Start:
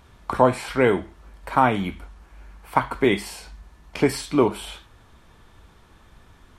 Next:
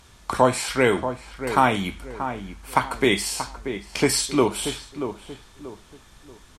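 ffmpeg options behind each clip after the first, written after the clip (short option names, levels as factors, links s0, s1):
-filter_complex "[0:a]equalizer=f=7300:t=o:w=2.3:g=13,asplit=2[s0][s1];[s1]adelay=633,lowpass=f=1500:p=1,volume=0.355,asplit=2[s2][s3];[s3]adelay=633,lowpass=f=1500:p=1,volume=0.35,asplit=2[s4][s5];[s5]adelay=633,lowpass=f=1500:p=1,volume=0.35,asplit=2[s6][s7];[s7]adelay=633,lowpass=f=1500:p=1,volume=0.35[s8];[s2][s4][s6][s8]amix=inputs=4:normalize=0[s9];[s0][s9]amix=inputs=2:normalize=0,volume=0.841"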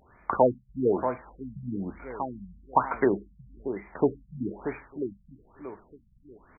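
-af "lowshelf=f=190:g=-10.5,afftfilt=real='re*lt(b*sr/1024,200*pow(2500/200,0.5+0.5*sin(2*PI*1.1*pts/sr)))':imag='im*lt(b*sr/1024,200*pow(2500/200,0.5+0.5*sin(2*PI*1.1*pts/sr)))':win_size=1024:overlap=0.75"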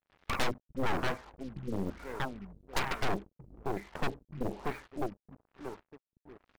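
-af "aeval=exprs='0.531*(cos(1*acos(clip(val(0)/0.531,-1,1)))-cos(1*PI/2))+0.237*(cos(8*acos(clip(val(0)/0.531,-1,1)))-cos(8*PI/2))':c=same,asoftclip=type=hard:threshold=0.0841,acrusher=bits=7:mix=0:aa=0.5,volume=0.708"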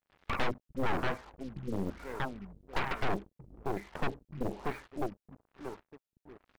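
-filter_complex "[0:a]acrossover=split=3600[s0][s1];[s1]acompressor=threshold=0.00251:ratio=4:attack=1:release=60[s2];[s0][s2]amix=inputs=2:normalize=0"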